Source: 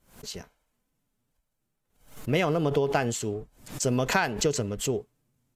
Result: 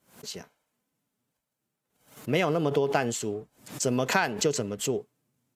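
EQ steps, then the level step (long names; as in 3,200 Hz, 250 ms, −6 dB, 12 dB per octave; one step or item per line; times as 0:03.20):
high-pass filter 140 Hz 12 dB per octave
0.0 dB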